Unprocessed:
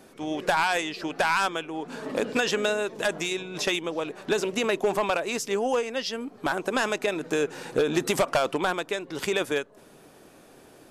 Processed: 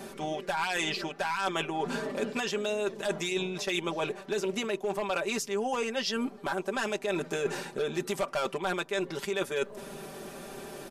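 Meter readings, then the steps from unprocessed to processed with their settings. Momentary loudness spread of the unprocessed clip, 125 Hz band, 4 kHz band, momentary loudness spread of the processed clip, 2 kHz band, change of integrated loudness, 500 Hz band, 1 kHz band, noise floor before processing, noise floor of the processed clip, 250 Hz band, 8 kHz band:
8 LU, -2.0 dB, -3.5 dB, 5 LU, -5.5 dB, -4.5 dB, -4.5 dB, -5.5 dB, -53 dBFS, -48 dBFS, -3.5 dB, -4.0 dB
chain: comb 5.1 ms, depth 76%; reverse; compression 16:1, threshold -35 dBFS, peak gain reduction 21 dB; reverse; trim +7.5 dB

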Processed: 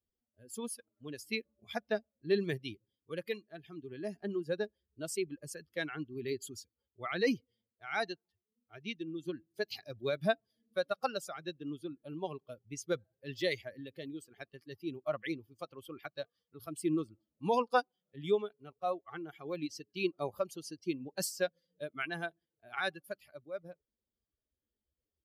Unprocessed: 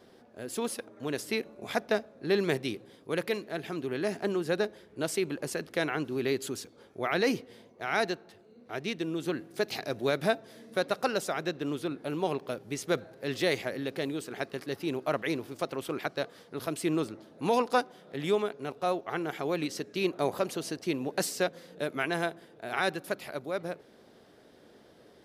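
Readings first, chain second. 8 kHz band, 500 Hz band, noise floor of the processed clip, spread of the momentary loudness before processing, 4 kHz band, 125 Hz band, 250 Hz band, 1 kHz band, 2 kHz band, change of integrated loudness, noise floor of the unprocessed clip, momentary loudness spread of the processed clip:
-5.5 dB, -6.0 dB, under -85 dBFS, 8 LU, -6.5 dB, -6.5 dB, -6.5 dB, -5.5 dB, -6.0 dB, -6.0 dB, -58 dBFS, 14 LU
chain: expander on every frequency bin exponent 2

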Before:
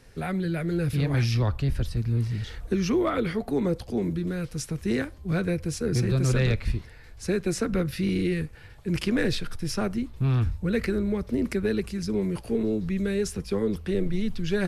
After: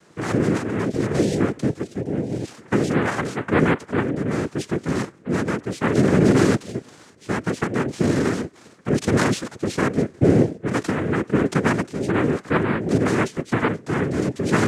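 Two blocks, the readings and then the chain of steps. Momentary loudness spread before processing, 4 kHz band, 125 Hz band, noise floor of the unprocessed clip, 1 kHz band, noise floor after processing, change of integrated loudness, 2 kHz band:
6 LU, +2.0 dB, +2.0 dB, -46 dBFS, +11.5 dB, -49 dBFS, +5.5 dB, +8.5 dB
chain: low-pass 2.3 kHz 6 dB/octave; random-step tremolo; noise-vocoded speech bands 3; trim +8 dB

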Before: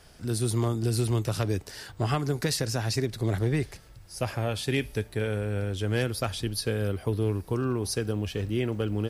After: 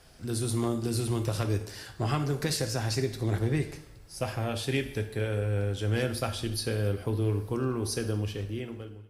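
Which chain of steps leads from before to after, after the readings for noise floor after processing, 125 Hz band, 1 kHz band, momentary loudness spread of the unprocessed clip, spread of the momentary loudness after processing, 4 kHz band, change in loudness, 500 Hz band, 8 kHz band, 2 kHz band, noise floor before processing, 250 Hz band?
-50 dBFS, -1.5 dB, -1.5 dB, 5 LU, 6 LU, -1.5 dB, -1.5 dB, -2.0 dB, -1.5 dB, -2.0 dB, -51 dBFS, -2.0 dB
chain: fade out at the end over 0.95 s; two-slope reverb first 0.63 s, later 1.7 s, DRR 6 dB; trim -2.5 dB; Opus 64 kbps 48 kHz

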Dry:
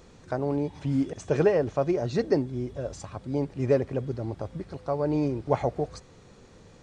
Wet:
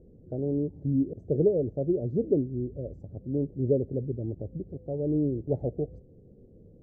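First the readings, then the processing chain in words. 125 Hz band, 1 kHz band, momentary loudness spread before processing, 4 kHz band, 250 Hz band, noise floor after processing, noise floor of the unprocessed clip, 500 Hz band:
0.0 dB, under -15 dB, 12 LU, under -35 dB, 0.0 dB, -54 dBFS, -53 dBFS, -2.5 dB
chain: inverse Chebyshev low-pass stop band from 1 kHz, stop band 40 dB

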